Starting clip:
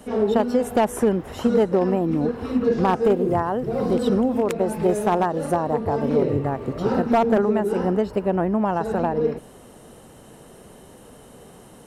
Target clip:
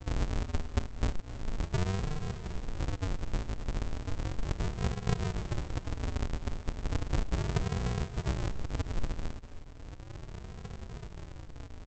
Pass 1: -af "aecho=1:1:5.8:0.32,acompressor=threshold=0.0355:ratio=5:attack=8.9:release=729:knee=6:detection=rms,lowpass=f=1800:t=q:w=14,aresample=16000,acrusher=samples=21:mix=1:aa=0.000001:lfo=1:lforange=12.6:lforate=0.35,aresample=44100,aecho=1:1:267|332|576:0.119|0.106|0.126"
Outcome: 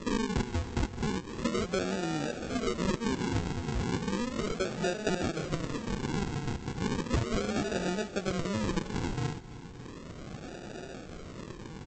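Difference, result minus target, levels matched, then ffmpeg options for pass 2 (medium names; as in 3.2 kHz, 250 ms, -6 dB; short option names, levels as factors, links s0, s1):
decimation with a swept rate: distortion -28 dB
-af "aecho=1:1:5.8:0.32,acompressor=threshold=0.0355:ratio=5:attack=8.9:release=729:knee=6:detection=rms,lowpass=f=1800:t=q:w=14,aresample=16000,acrusher=samples=76:mix=1:aa=0.000001:lfo=1:lforange=45.6:lforate=0.35,aresample=44100,aecho=1:1:267|332|576:0.119|0.106|0.126"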